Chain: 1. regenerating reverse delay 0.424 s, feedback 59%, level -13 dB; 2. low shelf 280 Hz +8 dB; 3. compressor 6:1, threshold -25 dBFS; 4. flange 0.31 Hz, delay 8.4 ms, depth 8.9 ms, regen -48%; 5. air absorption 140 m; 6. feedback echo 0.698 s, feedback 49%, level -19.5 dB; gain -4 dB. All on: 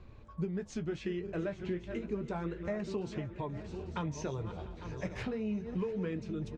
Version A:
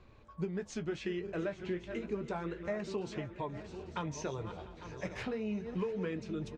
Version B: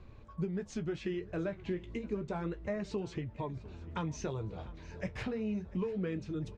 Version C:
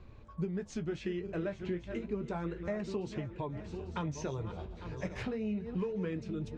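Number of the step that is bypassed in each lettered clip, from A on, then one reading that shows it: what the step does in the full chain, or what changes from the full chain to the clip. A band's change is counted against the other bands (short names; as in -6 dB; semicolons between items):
2, 125 Hz band -4.5 dB; 1, momentary loudness spread change +1 LU; 6, echo-to-direct -18.5 dB to none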